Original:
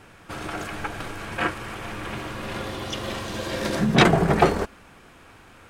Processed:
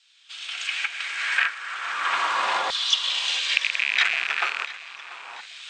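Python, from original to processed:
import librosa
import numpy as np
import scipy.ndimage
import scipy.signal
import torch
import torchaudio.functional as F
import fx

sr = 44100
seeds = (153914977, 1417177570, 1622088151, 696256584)

p1 = fx.rattle_buzz(x, sr, strikes_db=-28.0, level_db=-10.0)
p2 = fx.recorder_agc(p1, sr, target_db=-7.5, rise_db_per_s=18.0, max_gain_db=30)
p3 = fx.filter_lfo_highpass(p2, sr, shape='saw_down', hz=0.37, low_hz=830.0, high_hz=3900.0, q=2.5)
p4 = scipy.signal.sosfilt(scipy.signal.butter(12, 8500.0, 'lowpass', fs=sr, output='sos'), p3)
p5 = fx.peak_eq(p4, sr, hz=3700.0, db=3.5, octaves=0.77)
p6 = p5 + fx.echo_feedback(p5, sr, ms=689, feedback_pct=51, wet_db=-17, dry=0)
y = F.gain(torch.from_numpy(p6), -7.5).numpy()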